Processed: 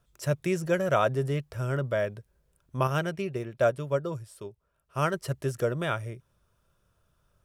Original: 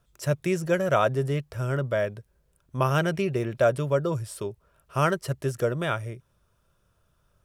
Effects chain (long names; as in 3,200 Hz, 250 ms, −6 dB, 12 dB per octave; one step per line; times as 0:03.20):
0:02.87–0:05.14: expander for the loud parts 1.5 to 1, over −36 dBFS
level −2 dB